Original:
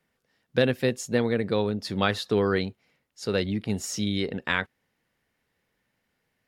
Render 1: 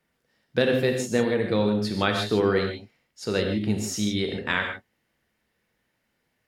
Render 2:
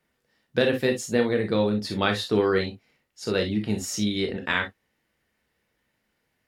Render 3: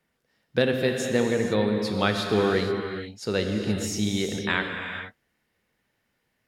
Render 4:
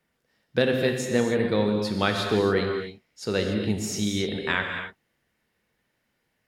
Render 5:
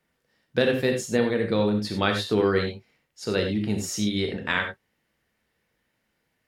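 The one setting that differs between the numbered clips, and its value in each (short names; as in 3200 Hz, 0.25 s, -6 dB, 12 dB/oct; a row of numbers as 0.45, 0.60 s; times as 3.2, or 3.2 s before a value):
non-linear reverb, gate: 180, 80, 500, 310, 120 ms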